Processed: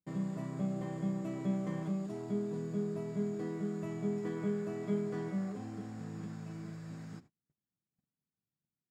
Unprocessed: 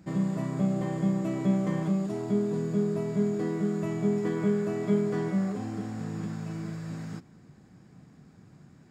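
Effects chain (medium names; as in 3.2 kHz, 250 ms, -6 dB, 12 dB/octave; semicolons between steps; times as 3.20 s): gate -46 dBFS, range -34 dB; trim -8.5 dB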